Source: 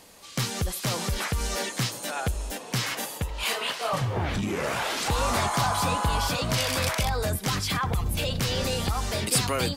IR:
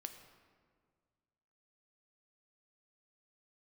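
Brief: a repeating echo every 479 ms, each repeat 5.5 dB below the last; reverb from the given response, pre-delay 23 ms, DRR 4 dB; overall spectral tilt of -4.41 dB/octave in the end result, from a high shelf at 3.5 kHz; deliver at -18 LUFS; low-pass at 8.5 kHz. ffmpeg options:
-filter_complex "[0:a]lowpass=8500,highshelf=f=3500:g=-4.5,aecho=1:1:479|958|1437|1916|2395|2874|3353:0.531|0.281|0.149|0.079|0.0419|0.0222|0.0118,asplit=2[s0][s1];[1:a]atrim=start_sample=2205,adelay=23[s2];[s1][s2]afir=irnorm=-1:irlink=0,volume=1[s3];[s0][s3]amix=inputs=2:normalize=0,volume=2.37"

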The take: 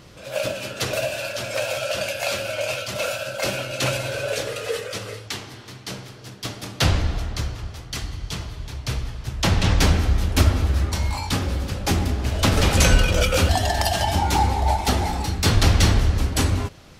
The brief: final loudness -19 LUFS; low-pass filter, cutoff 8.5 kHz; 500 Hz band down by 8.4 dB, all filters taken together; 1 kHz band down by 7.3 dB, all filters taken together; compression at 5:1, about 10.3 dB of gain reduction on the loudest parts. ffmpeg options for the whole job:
-af "lowpass=8500,equalizer=f=500:t=o:g=-8.5,equalizer=f=1000:t=o:g=-6.5,acompressor=threshold=0.0708:ratio=5,volume=3.16"

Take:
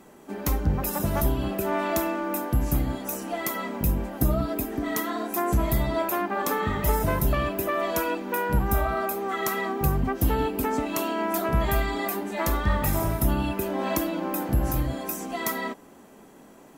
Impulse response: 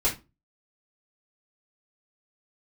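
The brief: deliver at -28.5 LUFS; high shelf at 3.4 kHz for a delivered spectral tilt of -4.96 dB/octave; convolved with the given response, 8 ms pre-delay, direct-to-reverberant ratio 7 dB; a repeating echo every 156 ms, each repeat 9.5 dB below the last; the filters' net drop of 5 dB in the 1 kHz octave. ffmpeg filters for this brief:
-filter_complex "[0:a]equalizer=f=1000:t=o:g=-6,highshelf=f=3400:g=-4.5,aecho=1:1:156|312|468|624:0.335|0.111|0.0365|0.012,asplit=2[s0][s1];[1:a]atrim=start_sample=2205,adelay=8[s2];[s1][s2]afir=irnorm=-1:irlink=0,volume=0.141[s3];[s0][s3]amix=inputs=2:normalize=0,volume=0.668"

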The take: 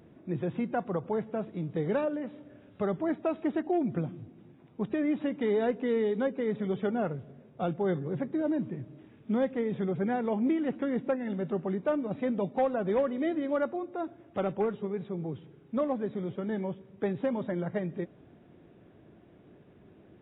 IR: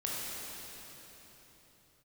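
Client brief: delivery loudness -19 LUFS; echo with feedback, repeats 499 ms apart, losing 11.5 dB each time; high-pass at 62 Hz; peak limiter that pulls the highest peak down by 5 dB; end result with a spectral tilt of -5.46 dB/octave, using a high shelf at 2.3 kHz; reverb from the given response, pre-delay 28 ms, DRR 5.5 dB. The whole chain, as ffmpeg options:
-filter_complex "[0:a]highpass=62,highshelf=f=2300:g=5,alimiter=limit=0.0708:level=0:latency=1,aecho=1:1:499|998|1497:0.266|0.0718|0.0194,asplit=2[s0][s1];[1:a]atrim=start_sample=2205,adelay=28[s2];[s1][s2]afir=irnorm=-1:irlink=0,volume=0.299[s3];[s0][s3]amix=inputs=2:normalize=0,volume=4.47"

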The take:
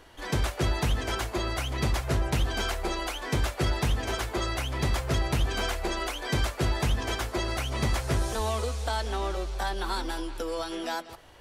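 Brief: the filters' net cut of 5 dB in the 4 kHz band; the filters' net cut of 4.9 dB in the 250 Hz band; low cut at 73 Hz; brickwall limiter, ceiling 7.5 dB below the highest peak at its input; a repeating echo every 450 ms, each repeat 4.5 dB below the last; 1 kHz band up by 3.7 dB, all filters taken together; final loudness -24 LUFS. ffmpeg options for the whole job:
-af "highpass=73,equalizer=f=250:t=o:g=-8.5,equalizer=f=1000:t=o:g=5.5,equalizer=f=4000:t=o:g=-7,alimiter=limit=0.0708:level=0:latency=1,aecho=1:1:450|900|1350|1800|2250|2700|3150|3600|4050:0.596|0.357|0.214|0.129|0.0772|0.0463|0.0278|0.0167|0.01,volume=2.37"

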